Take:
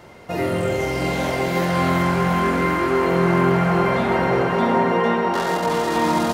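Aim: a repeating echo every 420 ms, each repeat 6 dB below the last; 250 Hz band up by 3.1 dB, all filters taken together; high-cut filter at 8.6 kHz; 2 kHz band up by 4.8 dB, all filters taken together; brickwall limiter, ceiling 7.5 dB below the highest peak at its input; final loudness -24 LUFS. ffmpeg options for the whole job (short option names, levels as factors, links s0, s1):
-af "lowpass=8600,equalizer=f=250:t=o:g=4.5,equalizer=f=2000:t=o:g=5.5,alimiter=limit=0.282:level=0:latency=1,aecho=1:1:420|840|1260|1680|2100|2520:0.501|0.251|0.125|0.0626|0.0313|0.0157,volume=0.562"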